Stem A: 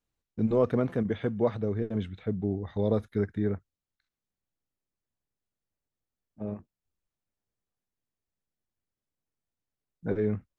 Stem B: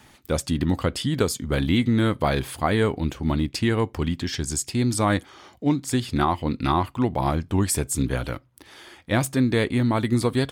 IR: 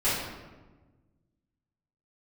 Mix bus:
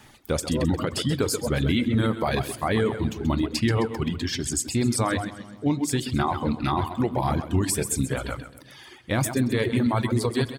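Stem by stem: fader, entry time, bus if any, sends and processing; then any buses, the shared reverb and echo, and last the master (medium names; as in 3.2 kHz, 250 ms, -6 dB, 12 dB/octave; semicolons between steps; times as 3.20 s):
-3.5 dB, 0.00 s, no send, no echo send, steep high-pass 330 Hz
+0.5 dB, 0.00 s, send -20.5 dB, echo send -6.5 dB, none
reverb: on, RT60 1.3 s, pre-delay 4 ms
echo: feedback delay 131 ms, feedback 51%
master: reverb removal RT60 1.3 s; peak limiter -14 dBFS, peak gain reduction 6.5 dB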